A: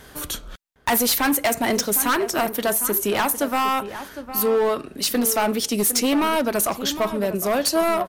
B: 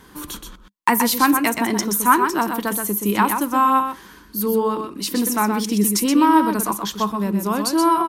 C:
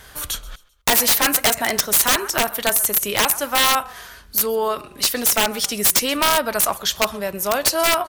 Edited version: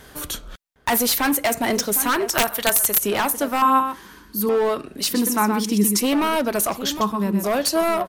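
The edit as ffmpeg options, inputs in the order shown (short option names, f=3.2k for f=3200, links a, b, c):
-filter_complex "[1:a]asplit=3[a][b][c];[0:a]asplit=5[d][e][f][g][h];[d]atrim=end=2.292[i];[2:a]atrim=start=2.288:end=3.032[j];[e]atrim=start=3.028:end=3.622[k];[a]atrim=start=3.618:end=4.492[l];[f]atrim=start=4.488:end=5.132[m];[b]atrim=start=5.128:end=6.012[n];[g]atrim=start=6.008:end=7.012[o];[c]atrim=start=7.008:end=7.442[p];[h]atrim=start=7.438[q];[i][j]acrossfade=d=0.004:c1=hsin:c2=hsin[r];[r][k]acrossfade=d=0.004:c1=hsin:c2=hsin[s];[s][l]acrossfade=d=0.004:c1=hsin:c2=hsin[t];[t][m]acrossfade=d=0.004:c1=hsin:c2=hsin[u];[u][n]acrossfade=d=0.004:c1=hsin:c2=hsin[v];[v][o]acrossfade=d=0.004:c1=hsin:c2=hsin[w];[w][p]acrossfade=d=0.004:c1=hsin:c2=hsin[x];[x][q]acrossfade=d=0.004:c1=hsin:c2=hsin"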